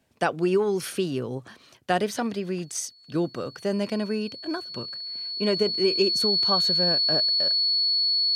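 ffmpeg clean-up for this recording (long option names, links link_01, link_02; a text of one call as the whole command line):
ffmpeg -i in.wav -af "bandreject=frequency=4400:width=30" out.wav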